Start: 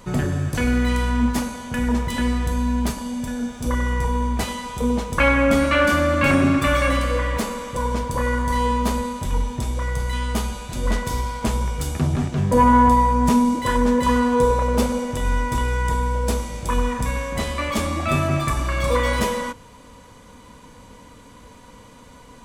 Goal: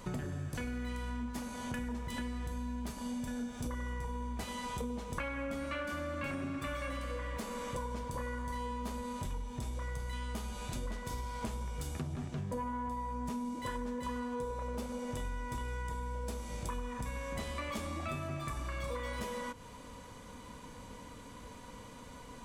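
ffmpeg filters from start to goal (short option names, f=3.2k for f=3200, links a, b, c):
-af "acompressor=threshold=-31dB:ratio=10,volume=-4.5dB"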